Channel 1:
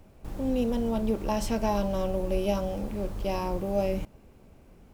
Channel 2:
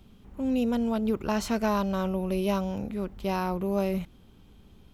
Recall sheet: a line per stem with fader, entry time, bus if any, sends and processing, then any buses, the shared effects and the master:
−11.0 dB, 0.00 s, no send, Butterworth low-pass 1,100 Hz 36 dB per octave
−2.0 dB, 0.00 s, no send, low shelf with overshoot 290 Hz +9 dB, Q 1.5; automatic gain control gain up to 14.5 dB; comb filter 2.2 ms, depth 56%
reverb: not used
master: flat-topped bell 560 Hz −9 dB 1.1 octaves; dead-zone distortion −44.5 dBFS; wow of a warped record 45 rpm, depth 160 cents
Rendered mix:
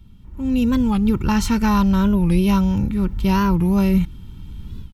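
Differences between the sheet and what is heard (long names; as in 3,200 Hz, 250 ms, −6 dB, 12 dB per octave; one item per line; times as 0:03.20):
stem 2: polarity flipped
master: missing dead-zone distortion −44.5 dBFS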